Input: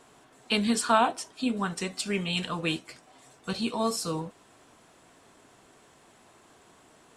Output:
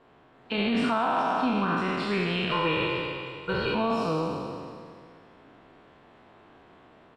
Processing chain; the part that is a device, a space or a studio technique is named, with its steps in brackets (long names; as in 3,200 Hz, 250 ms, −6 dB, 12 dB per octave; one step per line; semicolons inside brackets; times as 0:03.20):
peak hold with a decay on every bin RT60 2.25 s
0:02.51–0:03.75: comb filter 2.1 ms, depth 92%
high-frequency loss of the air 360 metres
single-tap delay 105 ms −18.5 dB
low-bitrate web radio (automatic gain control gain up to 3.5 dB; brickwall limiter −15 dBFS, peak gain reduction 9 dB; level −2 dB; AAC 48 kbit/s 44,100 Hz)